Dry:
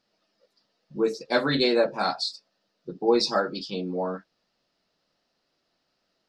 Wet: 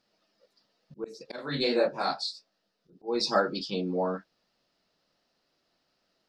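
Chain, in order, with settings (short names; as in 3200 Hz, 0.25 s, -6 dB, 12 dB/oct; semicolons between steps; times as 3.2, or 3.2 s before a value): auto swell 0.321 s; 1.36–2.93 detuned doubles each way 59 cents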